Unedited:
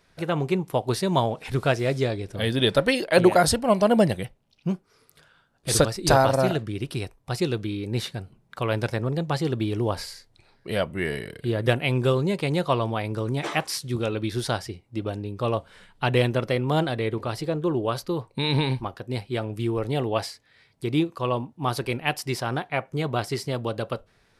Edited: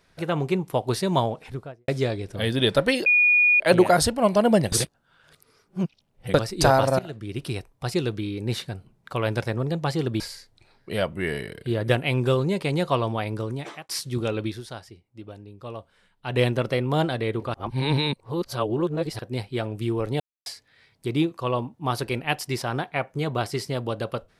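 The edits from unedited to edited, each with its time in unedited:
0:01.15–0:01.88: fade out and dull
0:03.06: insert tone 2,450 Hz −14.5 dBFS 0.54 s
0:04.18–0:05.80: reverse
0:06.45–0:06.88: fade in, from −20.5 dB
0:09.66–0:09.98: remove
0:13.12–0:13.67: fade out
0:14.23–0:16.19: duck −11.5 dB, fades 0.16 s
0:17.32–0:18.97: reverse
0:19.98–0:20.24: silence

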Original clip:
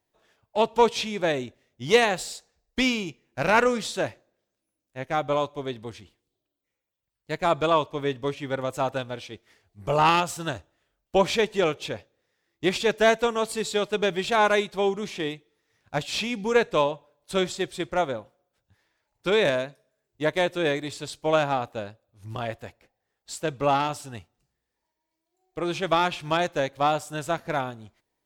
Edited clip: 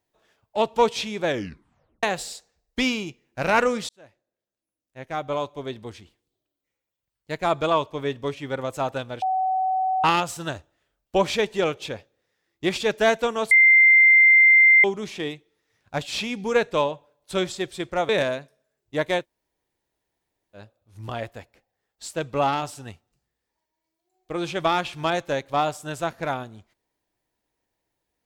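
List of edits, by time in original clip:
0:01.27: tape stop 0.76 s
0:03.89–0:05.78: fade in linear
0:09.22–0:10.04: beep over 754 Hz −20 dBFS
0:13.51–0:14.84: beep over 2,090 Hz −10.5 dBFS
0:18.09–0:19.36: remove
0:20.48–0:21.85: fill with room tone, crossfade 0.10 s

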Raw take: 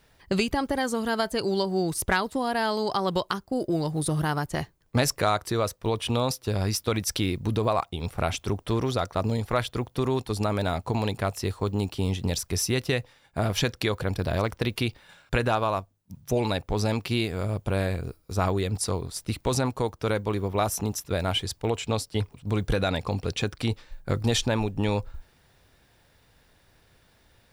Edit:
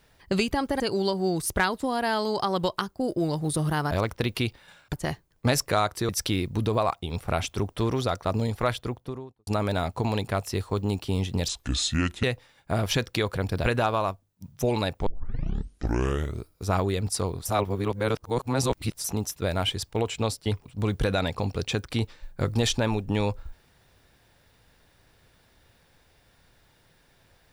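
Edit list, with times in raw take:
0:00.80–0:01.32: remove
0:05.59–0:06.99: remove
0:09.54–0:10.37: fade out and dull
0:12.38–0:12.90: play speed 69%
0:14.32–0:15.34: move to 0:04.43
0:16.75: tape start 1.43 s
0:19.14–0:20.73: reverse

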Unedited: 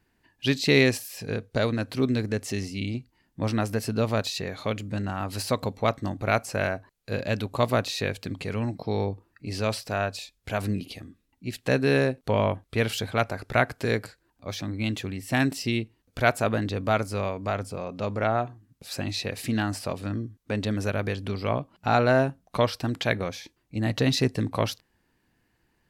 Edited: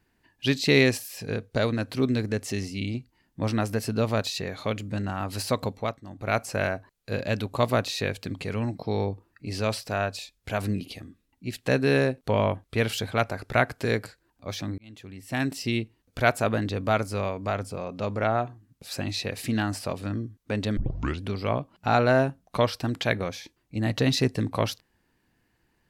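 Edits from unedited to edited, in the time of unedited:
0:05.66–0:06.42: duck −14 dB, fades 0.36 s
0:14.78–0:15.76: fade in
0:20.77: tape start 0.45 s

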